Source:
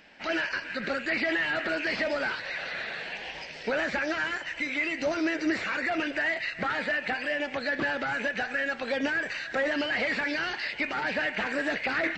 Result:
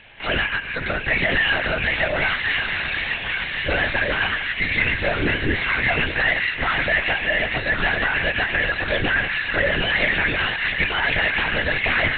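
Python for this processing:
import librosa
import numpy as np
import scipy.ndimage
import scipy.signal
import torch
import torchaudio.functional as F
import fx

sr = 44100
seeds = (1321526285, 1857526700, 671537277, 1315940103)

p1 = fx.high_shelf(x, sr, hz=2400.0, db=10.0)
p2 = p1 + fx.echo_wet_highpass(p1, sr, ms=1091, feedback_pct=63, hz=1500.0, wet_db=-3.5, dry=0)
p3 = fx.lpc_vocoder(p2, sr, seeds[0], excitation='whisper', order=10)
y = p3 * librosa.db_to_amplitude(4.5)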